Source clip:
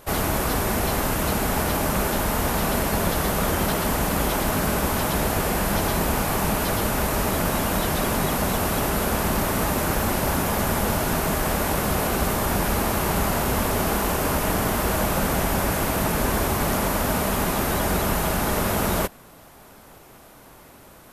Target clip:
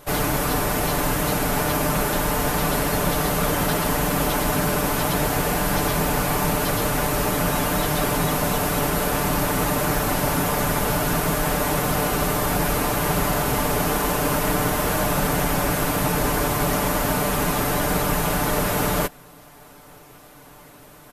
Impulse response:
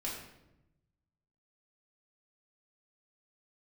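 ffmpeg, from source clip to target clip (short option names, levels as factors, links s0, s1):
-af "aecho=1:1:6.8:0.65"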